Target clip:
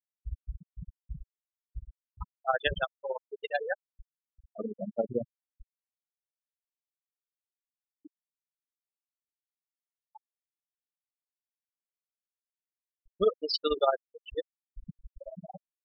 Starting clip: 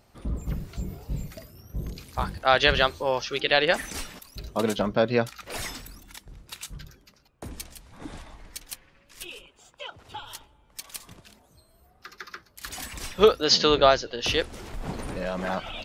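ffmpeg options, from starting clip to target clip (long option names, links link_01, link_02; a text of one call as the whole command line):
ffmpeg -i in.wav -af "tremolo=f=18:d=0.66,afftfilt=real='re*gte(hypot(re,im),0.2)':imag='im*gte(hypot(re,im),0.2)':win_size=1024:overlap=0.75,volume=-4.5dB" out.wav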